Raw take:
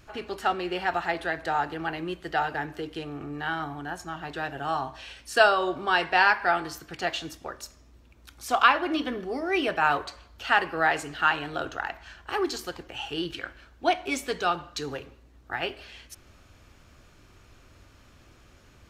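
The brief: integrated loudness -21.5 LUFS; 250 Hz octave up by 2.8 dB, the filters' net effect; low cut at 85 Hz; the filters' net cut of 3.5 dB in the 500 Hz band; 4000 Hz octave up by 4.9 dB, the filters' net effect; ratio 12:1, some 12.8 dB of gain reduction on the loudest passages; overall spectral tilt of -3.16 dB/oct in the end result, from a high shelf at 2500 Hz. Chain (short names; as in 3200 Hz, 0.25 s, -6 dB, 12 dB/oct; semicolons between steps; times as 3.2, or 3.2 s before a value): HPF 85 Hz; bell 250 Hz +8 dB; bell 500 Hz -8.5 dB; high shelf 2500 Hz +3.5 dB; bell 4000 Hz +4 dB; compressor 12:1, threshold -26 dBFS; gain +11 dB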